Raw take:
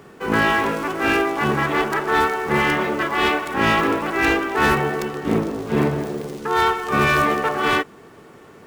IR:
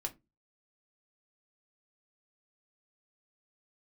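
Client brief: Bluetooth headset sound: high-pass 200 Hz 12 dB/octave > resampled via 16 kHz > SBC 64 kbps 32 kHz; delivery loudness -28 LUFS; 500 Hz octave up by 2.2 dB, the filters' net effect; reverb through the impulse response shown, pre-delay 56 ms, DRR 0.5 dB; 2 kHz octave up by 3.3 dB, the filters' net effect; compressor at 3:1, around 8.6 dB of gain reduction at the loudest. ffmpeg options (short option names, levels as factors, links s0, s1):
-filter_complex "[0:a]equalizer=f=500:t=o:g=3,equalizer=f=2000:t=o:g=4,acompressor=threshold=0.0631:ratio=3,asplit=2[s0][s1];[1:a]atrim=start_sample=2205,adelay=56[s2];[s1][s2]afir=irnorm=-1:irlink=0,volume=0.944[s3];[s0][s3]amix=inputs=2:normalize=0,highpass=200,aresample=16000,aresample=44100,volume=0.531" -ar 32000 -c:a sbc -b:a 64k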